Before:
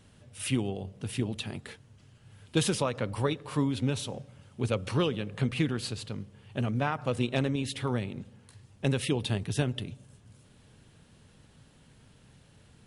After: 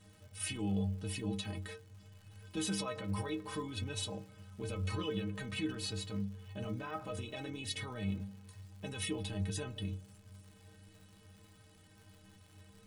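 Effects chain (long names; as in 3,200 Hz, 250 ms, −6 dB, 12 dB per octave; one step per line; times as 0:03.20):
brickwall limiter −25.5 dBFS, peak gain reduction 11.5 dB
stiff-string resonator 93 Hz, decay 0.42 s, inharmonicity 0.03
surface crackle 190 per second −61 dBFS
level +8.5 dB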